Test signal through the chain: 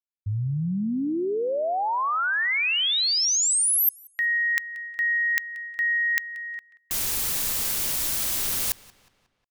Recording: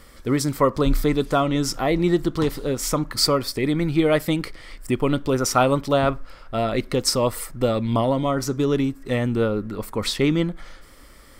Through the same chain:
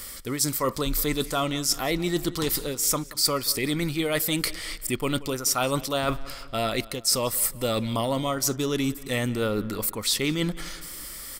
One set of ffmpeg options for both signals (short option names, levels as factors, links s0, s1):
-filter_complex "[0:a]crystalizer=i=6:c=0,areverse,acompressor=threshold=0.0708:ratio=5,areverse,anlmdn=0.0398,asplit=2[s0][s1];[s1]adelay=181,lowpass=f=4400:p=1,volume=0.112,asplit=2[s2][s3];[s3]adelay=181,lowpass=f=4400:p=1,volume=0.51,asplit=2[s4][s5];[s5]adelay=181,lowpass=f=4400:p=1,volume=0.51,asplit=2[s6][s7];[s7]adelay=181,lowpass=f=4400:p=1,volume=0.51[s8];[s0][s2][s4][s6][s8]amix=inputs=5:normalize=0"